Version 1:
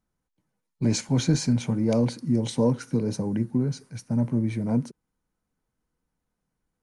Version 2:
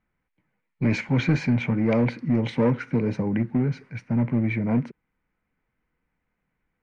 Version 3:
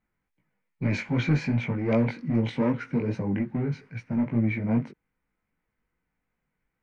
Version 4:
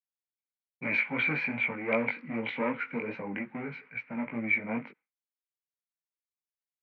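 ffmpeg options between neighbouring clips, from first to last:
-filter_complex "[0:a]asplit=2[a][b];[b]aeval=exprs='0.0841*(abs(mod(val(0)/0.0841+3,4)-2)-1)':c=same,volume=-10dB[c];[a][c]amix=inputs=2:normalize=0,lowpass=f=2.2k:t=q:w=3.7"
-af "flanger=delay=17.5:depth=3.7:speed=2.5"
-af "agate=range=-33dB:threshold=-45dB:ratio=3:detection=peak,highpass=370,equalizer=f=370:t=q:w=4:g=-8,equalizer=f=650:t=q:w=4:g=-3,equalizer=f=1.3k:t=q:w=4:g=3,equalizer=f=2.3k:t=q:w=4:g=9,lowpass=f=3.3k:w=0.5412,lowpass=f=3.3k:w=1.3066"

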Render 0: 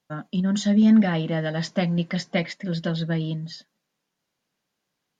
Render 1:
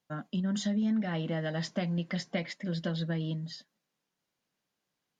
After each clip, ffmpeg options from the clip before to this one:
-af "acompressor=threshold=-23dB:ratio=4,volume=-5dB"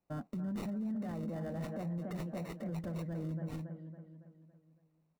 -filter_complex "[0:a]acrossover=split=1400[a][b];[a]aecho=1:1:279|558|837|1116|1395|1674:0.398|0.195|0.0956|0.0468|0.023|0.0112[c];[b]acrusher=samples=27:mix=1:aa=0.000001[d];[c][d]amix=inputs=2:normalize=0,alimiter=level_in=7dB:limit=-24dB:level=0:latency=1:release=36,volume=-7dB,volume=-1.5dB"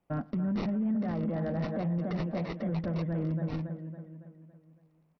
-af "aecho=1:1:110:0.0668,aresample=11025,aresample=44100,volume=7.5dB" -ar 44100 -c:a sbc -b:a 64k

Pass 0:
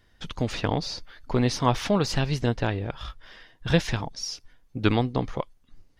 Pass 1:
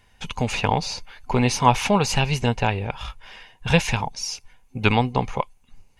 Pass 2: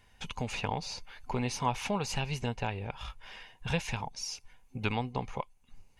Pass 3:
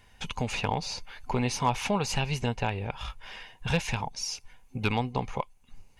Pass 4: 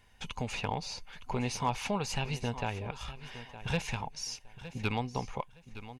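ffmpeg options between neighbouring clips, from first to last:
-af "superequalizer=6b=0.398:9b=2.24:12b=2.51:15b=2:16b=2.24,volume=3dB"
-af "acompressor=threshold=-38dB:ratio=1.5,volume=-4.5dB"
-af "asoftclip=type=hard:threshold=-19dB,volume=4.5dB"
-af "aecho=1:1:914|1828:0.2|0.0439,volume=-5dB"

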